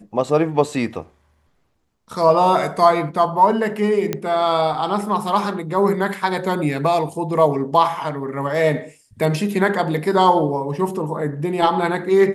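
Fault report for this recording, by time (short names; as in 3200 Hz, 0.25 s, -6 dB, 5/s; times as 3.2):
4.13 pop -8 dBFS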